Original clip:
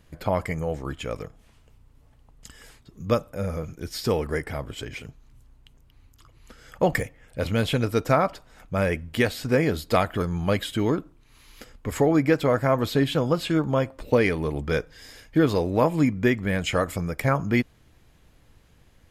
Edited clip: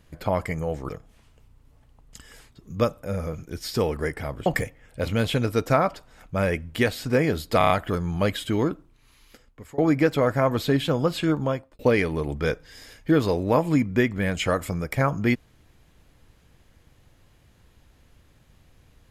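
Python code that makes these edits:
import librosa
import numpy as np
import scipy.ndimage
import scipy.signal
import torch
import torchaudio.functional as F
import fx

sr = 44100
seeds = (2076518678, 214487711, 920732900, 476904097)

y = fx.edit(x, sr, fx.cut(start_s=0.89, length_s=0.3),
    fx.cut(start_s=4.76, length_s=2.09),
    fx.stutter(start_s=9.97, slice_s=0.03, count=5),
    fx.fade_out_to(start_s=10.99, length_s=1.06, floor_db=-23.5),
    fx.fade_out_span(start_s=13.67, length_s=0.39), tone=tone)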